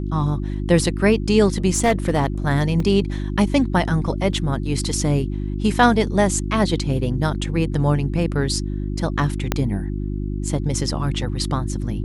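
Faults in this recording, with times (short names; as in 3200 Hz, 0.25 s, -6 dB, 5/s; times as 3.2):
hum 50 Hz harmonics 7 -25 dBFS
1.74–2.26 clipped -12 dBFS
2.8 gap 2.2 ms
4.33 gap 2 ms
9.52 pop -4 dBFS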